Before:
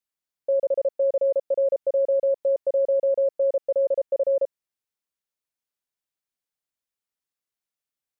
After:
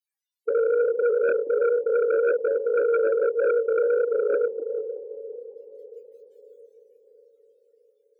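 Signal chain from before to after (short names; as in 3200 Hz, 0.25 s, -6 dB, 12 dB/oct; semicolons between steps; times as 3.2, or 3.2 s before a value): regenerating reverse delay 0.184 s, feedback 57%, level -12 dB; HPF 540 Hz 6 dB/oct; dynamic EQ 700 Hz, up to -4 dB, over -38 dBFS, Q 1.7; loudest bins only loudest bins 32; formant shift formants -3 st; chorus 0.36 Hz, delay 17 ms, depth 6.7 ms; diffused feedback echo 0.56 s, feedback 52%, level -15 dB; sine folder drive 6 dB, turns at -22 dBFS; Butterworth band-stop 690 Hz, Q 6; gain +4.5 dB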